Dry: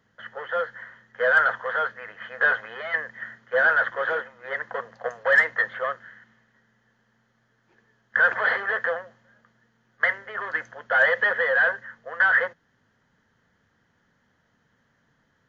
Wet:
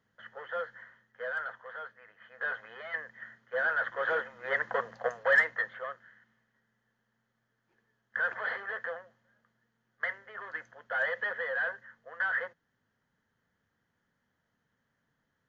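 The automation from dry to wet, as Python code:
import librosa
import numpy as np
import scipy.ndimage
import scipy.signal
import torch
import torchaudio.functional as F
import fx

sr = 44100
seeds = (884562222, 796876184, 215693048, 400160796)

y = fx.gain(x, sr, db=fx.line((0.77, -9.0), (1.39, -17.0), (2.23, -17.0), (2.7, -10.0), (3.72, -10.0), (4.38, 0.0), (4.92, 0.0), (5.85, -11.5)))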